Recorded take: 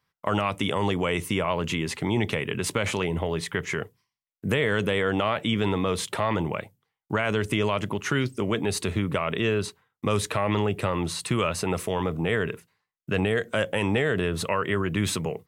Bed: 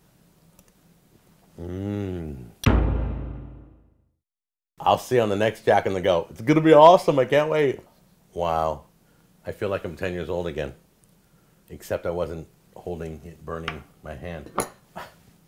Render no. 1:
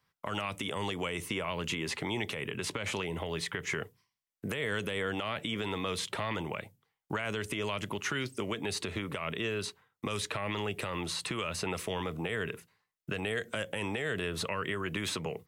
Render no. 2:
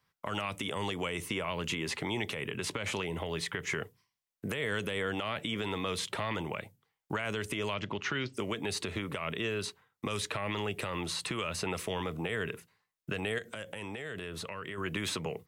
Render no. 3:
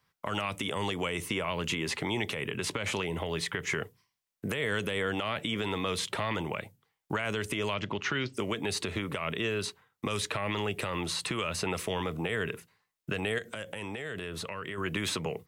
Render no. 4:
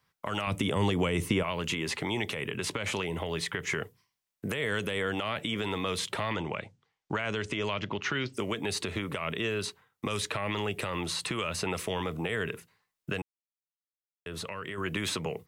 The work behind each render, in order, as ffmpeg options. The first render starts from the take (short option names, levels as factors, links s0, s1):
-filter_complex "[0:a]acrossover=split=360|1700|5900[s0][s1][s2][s3];[s0]acompressor=threshold=0.0112:ratio=4[s4];[s1]acompressor=threshold=0.0141:ratio=4[s5];[s2]acompressor=threshold=0.02:ratio=4[s6];[s3]acompressor=threshold=0.00562:ratio=4[s7];[s4][s5][s6][s7]amix=inputs=4:normalize=0,alimiter=limit=0.0794:level=0:latency=1:release=105"
-filter_complex "[0:a]asettb=1/sr,asplit=3[s0][s1][s2];[s0]atrim=end=7.744[s3];[s1]atrim=start=7.74:end=8.34,asetpts=PTS-STARTPTS,afade=t=in:d=0.004:c=qsin,afade=t=out:st=0.596:d=0.004:c=qsin,lowpass=f=5400:w=0.5412,lowpass=f=5400:w=1.3066[s4];[s2]atrim=start=8.336[s5];[s3][s4]acrossfade=d=0.004:c1=hsin:c2=qsin[s6];[s6][s5]acrossfade=d=0.004:c1=qsin:c2=hsin,asettb=1/sr,asplit=3[s7][s8][s9];[s7]atrim=end=13.384[s10];[s8]atrim=start=13.38:end=14.78,asetpts=PTS-STARTPTS,afade=t=in:d=0.004:c=qsin,afade=t=out:st=1.396:d=0.004:c=qsin,acompressor=threshold=0.0112:ratio=2.5:attack=3.2:release=140:knee=1:detection=peak[s11];[s9]atrim=start=14.776[s12];[s10][s11]acrossfade=d=0.004:c1=hsin:c2=qsin[s13];[s13][s12]acrossfade=d=0.004:c1=qsin:c2=hsin"
-af "volume=1.33"
-filter_complex "[0:a]asettb=1/sr,asplit=3[s0][s1][s2];[s0]atrim=end=0.474[s3];[s1]atrim=start=0.47:end=1.43,asetpts=PTS-STARTPTS,afade=t=in:d=0.004:c=qsin,afade=t=out:st=0.956:d=0.004:c=qsin,lowshelf=f=420:g=10[s4];[s2]atrim=start=1.426[s5];[s3][s4]acrossfade=d=0.004:c1=hsin:c2=qsin[s6];[s6][s5]acrossfade=d=0.004:c1=qsin:c2=hsin,asettb=1/sr,asplit=3[s7][s8][s9];[s7]atrim=end=6.334[s10];[s8]atrim=start=6.33:end=8.03,asetpts=PTS-STARTPTS,afade=t=in:d=0.004:c=qsin,afade=t=out:st=1.696:d=0.004:c=qsin,lowpass=f=7000:w=0.5412,lowpass=f=7000:w=1.3066[s11];[s9]atrim=start=8.026[s12];[s10][s11]acrossfade=d=0.004:c1=hsin:c2=qsin[s13];[s13][s12]acrossfade=d=0.004:c1=qsin:c2=hsin,asplit=3[s14][s15][s16];[s14]atrim=end=13.22,asetpts=PTS-STARTPTS,afade=t=out:st=13.216:d=0.004:c=hsin[s17];[s15]atrim=start=13.22:end=14.26,asetpts=PTS-STARTPTS,volume=0[s18];[s16]atrim=start=14.26,asetpts=PTS-STARTPTS,afade=t=in:d=0.004:c=hsin[s19];[s17][s18][s19]concat=n=3:v=0:a=1"